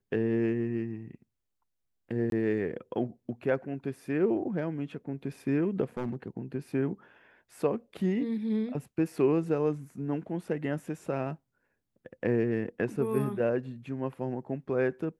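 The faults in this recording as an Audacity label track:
2.300000	2.320000	drop-out 22 ms
5.970000	6.280000	clipping −28 dBFS

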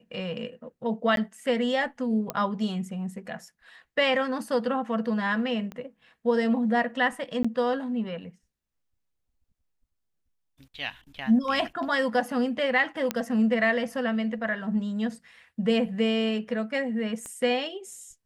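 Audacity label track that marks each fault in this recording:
1.160000	1.170000	drop-out 12 ms
2.300000	2.300000	click −14 dBFS
5.720000	5.720000	click −25 dBFS
7.430000	7.450000	drop-out 15 ms
13.110000	13.110000	click −11 dBFS
17.260000	17.260000	click −26 dBFS

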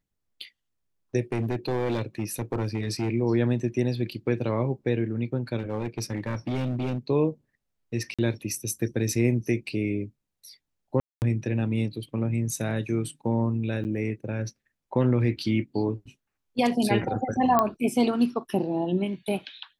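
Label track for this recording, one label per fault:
1.320000	3.090000	clipping −22.5 dBFS
5.580000	6.980000	clipping −24.5 dBFS
8.140000	8.190000	drop-out 46 ms
11.000000	11.220000	drop-out 219 ms
13.840000	13.850000	drop-out 9 ms
17.590000	17.590000	click −9 dBFS

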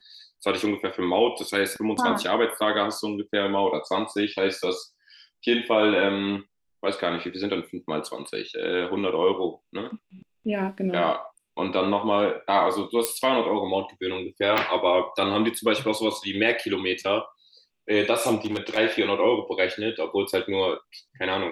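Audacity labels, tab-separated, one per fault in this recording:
13.050000	13.050000	click −5 dBFS
14.580000	14.580000	click
18.360000	18.780000	clipping −22.5 dBFS

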